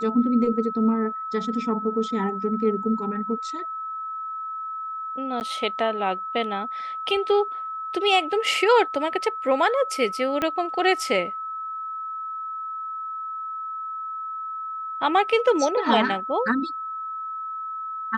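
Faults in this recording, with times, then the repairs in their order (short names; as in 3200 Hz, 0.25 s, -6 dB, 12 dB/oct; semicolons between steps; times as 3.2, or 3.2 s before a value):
tone 1300 Hz -29 dBFS
5.4–5.41 gap 9.8 ms
10.42 pop -11 dBFS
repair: de-click; notch 1300 Hz, Q 30; interpolate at 5.4, 9.8 ms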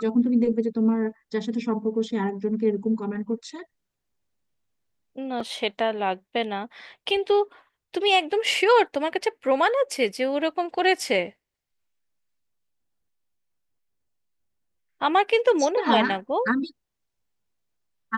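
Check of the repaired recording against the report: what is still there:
10.42 pop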